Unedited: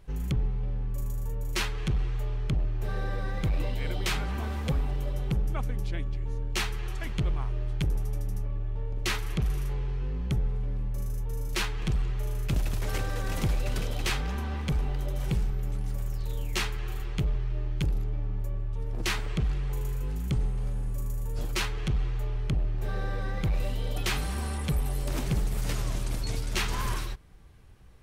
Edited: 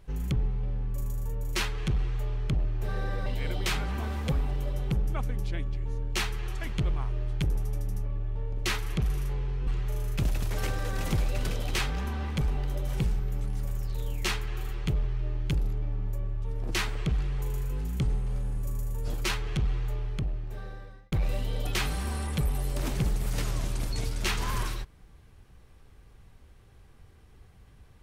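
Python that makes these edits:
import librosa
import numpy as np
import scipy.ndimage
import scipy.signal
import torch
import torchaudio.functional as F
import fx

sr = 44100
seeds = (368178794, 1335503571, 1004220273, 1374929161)

y = fx.edit(x, sr, fx.cut(start_s=3.26, length_s=0.4),
    fx.cut(start_s=10.07, length_s=1.91),
    fx.fade_out_span(start_s=22.15, length_s=1.28), tone=tone)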